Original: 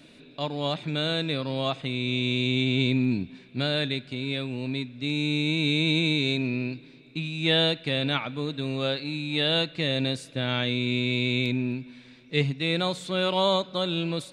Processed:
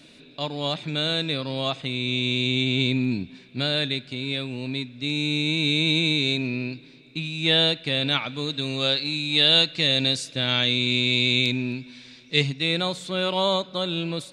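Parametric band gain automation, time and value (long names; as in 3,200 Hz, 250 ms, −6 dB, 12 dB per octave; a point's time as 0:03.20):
parametric band 5,600 Hz 1.9 octaves
0:07.89 +6 dB
0:08.42 +13 dB
0:12.37 +13 dB
0:12.92 +2.5 dB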